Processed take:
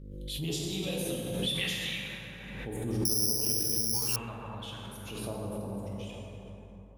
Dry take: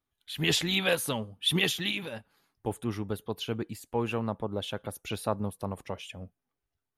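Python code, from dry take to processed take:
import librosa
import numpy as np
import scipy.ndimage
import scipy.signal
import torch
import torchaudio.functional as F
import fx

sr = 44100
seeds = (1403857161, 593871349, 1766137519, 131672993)

y = fx.dmg_buzz(x, sr, base_hz=50.0, harmonics=11, level_db=-51.0, tilt_db=-4, odd_only=False)
y = fx.phaser_stages(y, sr, stages=2, low_hz=320.0, high_hz=1800.0, hz=0.41, feedback_pct=20)
y = fx.rev_plate(y, sr, seeds[0], rt60_s=3.8, hf_ratio=0.4, predelay_ms=0, drr_db=-4.0)
y = fx.resample_bad(y, sr, factor=8, down='filtered', up='zero_stuff', at=(3.05, 4.16))
y = fx.pre_swell(y, sr, db_per_s=31.0)
y = y * librosa.db_to_amplitude(-8.5)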